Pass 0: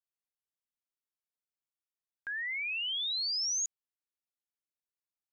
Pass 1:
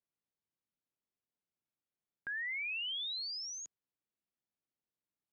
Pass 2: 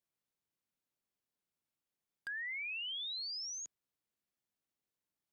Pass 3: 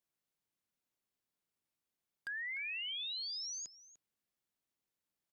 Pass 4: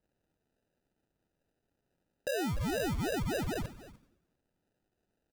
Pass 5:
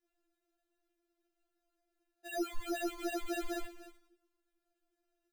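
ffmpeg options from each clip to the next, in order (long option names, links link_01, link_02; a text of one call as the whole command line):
ffmpeg -i in.wav -af "lowpass=4000,equalizer=frequency=190:width=0.37:gain=12.5,volume=-3.5dB" out.wav
ffmpeg -i in.wav -af "acompressor=threshold=-41dB:ratio=6,aeval=exprs='0.0126*(abs(mod(val(0)/0.0126+3,4)-2)-1)':channel_layout=same,volume=1.5dB" out.wav
ffmpeg -i in.wav -filter_complex "[0:a]asplit=2[link_01][link_02];[link_02]adelay=297.4,volume=-13dB,highshelf=frequency=4000:gain=-6.69[link_03];[link_01][link_03]amix=inputs=2:normalize=0" out.wav
ffmpeg -i in.wav -filter_complex "[0:a]acrusher=samples=40:mix=1:aa=0.000001,asplit=6[link_01][link_02][link_03][link_04][link_05][link_06];[link_02]adelay=95,afreqshift=-73,volume=-19.5dB[link_07];[link_03]adelay=190,afreqshift=-146,volume=-24.1dB[link_08];[link_04]adelay=285,afreqshift=-219,volume=-28.7dB[link_09];[link_05]adelay=380,afreqshift=-292,volume=-33.2dB[link_10];[link_06]adelay=475,afreqshift=-365,volume=-37.8dB[link_11];[link_01][link_07][link_08][link_09][link_10][link_11]amix=inputs=6:normalize=0,volume=8.5dB" out.wav
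ffmpeg -i in.wav -af "asoftclip=type=tanh:threshold=-31.5dB,afftfilt=real='re*4*eq(mod(b,16),0)':imag='im*4*eq(mod(b,16),0)':win_size=2048:overlap=0.75,volume=1dB" out.wav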